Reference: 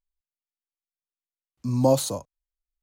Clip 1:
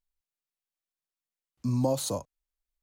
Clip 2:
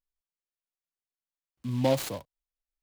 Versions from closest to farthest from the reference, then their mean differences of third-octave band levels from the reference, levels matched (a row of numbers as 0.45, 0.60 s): 1, 2; 3.0, 5.0 dB